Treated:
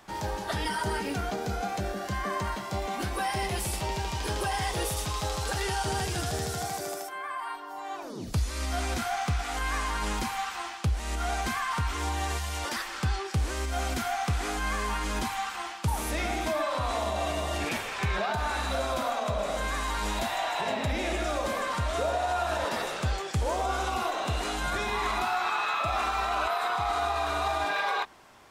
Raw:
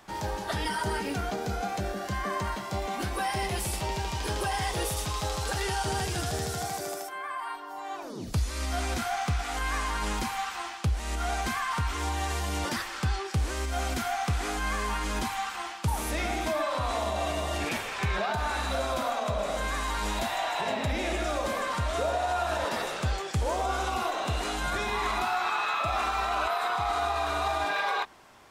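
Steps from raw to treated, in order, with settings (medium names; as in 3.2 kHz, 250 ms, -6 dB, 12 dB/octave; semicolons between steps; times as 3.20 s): 12.37–12.87 s: peaking EQ 440 Hz -> 83 Hz -13 dB 1.8 oct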